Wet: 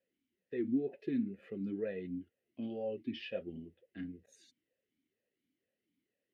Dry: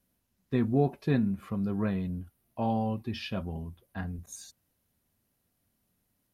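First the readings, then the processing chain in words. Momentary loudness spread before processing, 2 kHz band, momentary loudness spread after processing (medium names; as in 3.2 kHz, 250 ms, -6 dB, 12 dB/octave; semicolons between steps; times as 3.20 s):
14 LU, -8.5 dB, 13 LU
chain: peak limiter -23 dBFS, peak gain reduction 8.5 dB; talking filter e-i 2.1 Hz; trim +6 dB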